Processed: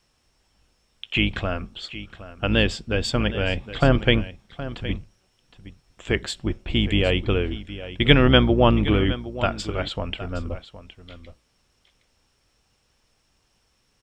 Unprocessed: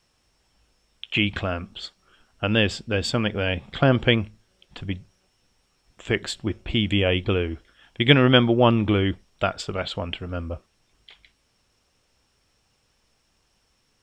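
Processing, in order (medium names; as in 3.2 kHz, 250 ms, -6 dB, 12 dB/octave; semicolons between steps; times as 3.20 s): octave divider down 2 oct, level -3 dB; delay 766 ms -14.5 dB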